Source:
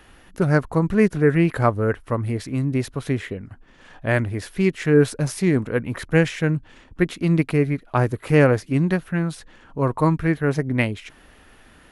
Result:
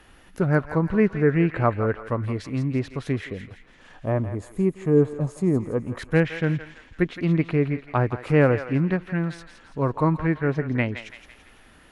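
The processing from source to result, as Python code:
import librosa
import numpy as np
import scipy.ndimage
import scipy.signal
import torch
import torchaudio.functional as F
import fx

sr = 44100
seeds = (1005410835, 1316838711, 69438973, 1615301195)

y = fx.env_lowpass_down(x, sr, base_hz=2600.0, full_db=-16.5)
y = fx.spec_box(y, sr, start_s=4.05, length_s=1.92, low_hz=1300.0, high_hz=6300.0, gain_db=-14)
y = fx.echo_thinned(y, sr, ms=167, feedback_pct=51, hz=1100.0, wet_db=-8)
y = F.gain(torch.from_numpy(y), -2.5).numpy()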